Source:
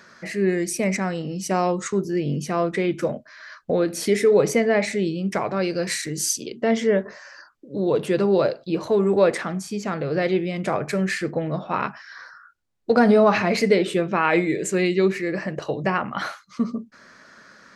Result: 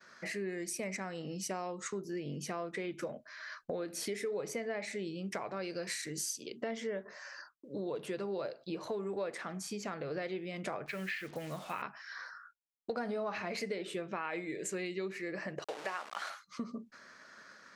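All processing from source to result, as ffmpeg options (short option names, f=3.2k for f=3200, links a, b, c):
-filter_complex "[0:a]asettb=1/sr,asplit=3[a][b][c];[a]atrim=end=10.864[d];[b]atrim=start=10.86:end=11.82,asetpts=PTS-STARTPTS,afade=t=in:d=0.004:c=qsin,afade=t=out:st=0.956:d=0.004:c=qsin,lowpass=f=2.9k:t=q:w=1.9,acrusher=bits=6:mix=0:aa=0.5,equalizer=f=420:w=0.41:g=-6.5[e];[c]atrim=start=11.816[f];[d][e]acrossfade=d=0.004:c1=hsin:c2=qsin[g];[g][f]acrossfade=d=0.004:c1=qsin:c2=hsin,asettb=1/sr,asplit=3[h][i][j];[h]atrim=end=15.644[k];[i]atrim=start=15.64:end=16.3,asetpts=PTS-STARTPTS,afade=t=in:d=0.004:c=qsin,afade=t=out:st=0.656:d=0.004:c=qsin,aeval=exprs='val(0)*gte(abs(val(0)),0.0335)':c=same,highpass=490,lowpass=7.7k[l];[j]atrim=start=16.296[m];[k][l]acrossfade=d=0.004:c1=hsin:c2=qsin[n];[n][m]acrossfade=d=0.004:c1=qsin:c2=hsin,agate=range=-33dB:threshold=-46dB:ratio=3:detection=peak,lowshelf=f=290:g=-8.5,acompressor=threshold=-33dB:ratio=4,volume=-4dB"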